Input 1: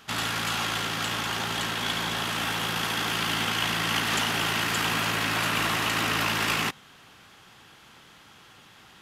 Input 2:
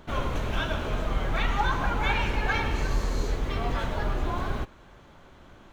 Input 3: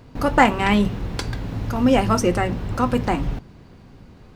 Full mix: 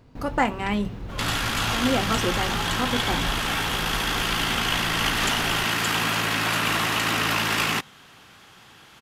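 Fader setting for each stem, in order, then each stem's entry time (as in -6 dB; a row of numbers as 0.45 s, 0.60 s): +2.5 dB, -8.0 dB, -7.5 dB; 1.10 s, 1.00 s, 0.00 s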